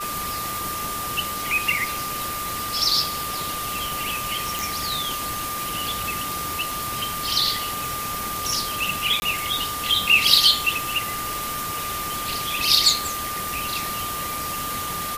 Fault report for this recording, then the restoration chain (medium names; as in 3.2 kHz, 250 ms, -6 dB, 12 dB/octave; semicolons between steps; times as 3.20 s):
crackle 37 per s -32 dBFS
whine 1.2 kHz -29 dBFS
4.59 s: pop
9.20–9.22 s: dropout 20 ms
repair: de-click; band-stop 1.2 kHz, Q 30; interpolate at 9.20 s, 20 ms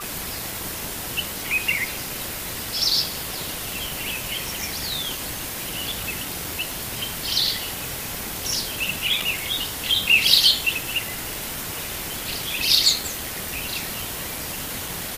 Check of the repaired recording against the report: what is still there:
nothing left